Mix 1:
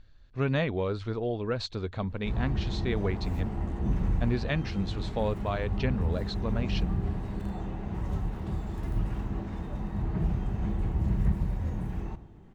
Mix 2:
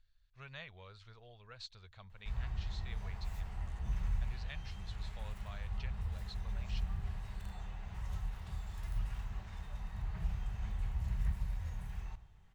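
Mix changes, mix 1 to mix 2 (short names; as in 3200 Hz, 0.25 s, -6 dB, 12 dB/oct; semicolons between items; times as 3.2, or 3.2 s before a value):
speech -10.0 dB; master: add passive tone stack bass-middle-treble 10-0-10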